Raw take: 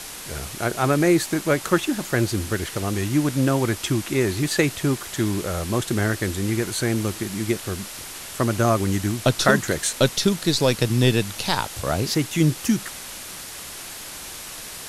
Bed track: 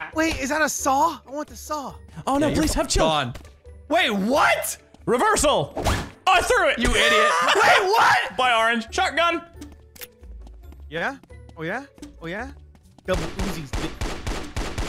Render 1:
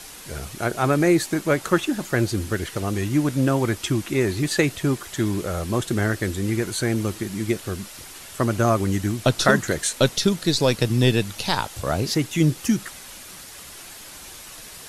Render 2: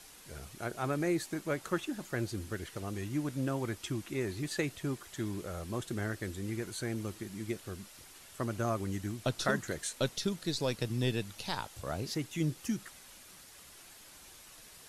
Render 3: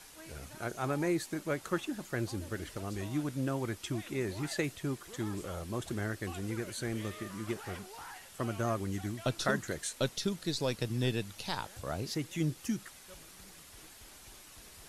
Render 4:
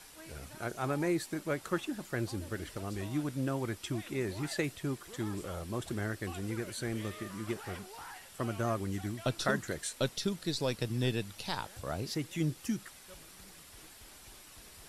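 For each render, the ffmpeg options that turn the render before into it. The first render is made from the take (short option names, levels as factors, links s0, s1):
-af "afftdn=nr=6:nf=-37"
-af "volume=0.211"
-filter_complex "[1:a]volume=0.0266[s0];[0:a][s0]amix=inputs=2:normalize=0"
-af "bandreject=f=6500:w=17"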